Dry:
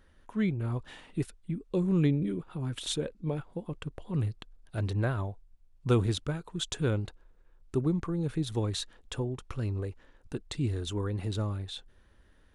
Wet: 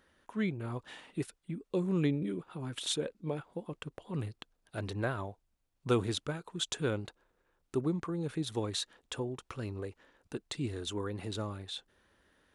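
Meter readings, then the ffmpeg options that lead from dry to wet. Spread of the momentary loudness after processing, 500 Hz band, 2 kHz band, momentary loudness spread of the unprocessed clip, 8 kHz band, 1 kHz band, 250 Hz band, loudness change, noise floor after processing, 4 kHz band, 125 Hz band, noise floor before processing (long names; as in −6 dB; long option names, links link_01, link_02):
12 LU, −1.5 dB, 0.0 dB, 13 LU, 0.0 dB, −0.5 dB, −4.0 dB, −4.0 dB, −78 dBFS, 0.0 dB, −7.5 dB, −61 dBFS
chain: -af "highpass=frequency=280:poles=1"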